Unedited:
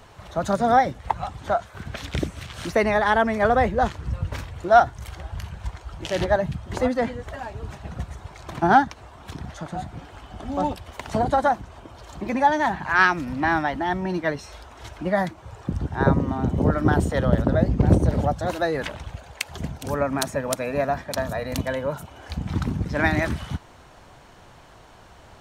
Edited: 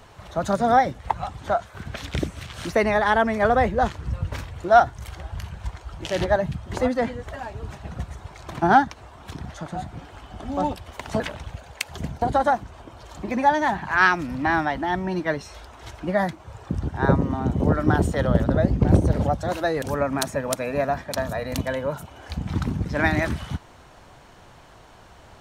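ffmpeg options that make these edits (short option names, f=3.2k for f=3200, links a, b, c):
-filter_complex "[0:a]asplit=4[a][b][c][d];[a]atrim=end=11.202[e];[b]atrim=start=18.798:end=19.822[f];[c]atrim=start=11.198:end=18.802[g];[d]atrim=start=19.818[h];[e][f]acrossfade=d=0.004:c1=hsin:c2=hsin[i];[i][g]acrossfade=d=0.004:c1=hsin:c2=hsin[j];[j][h]acrossfade=d=0.004:c1=hsin:c2=hsin"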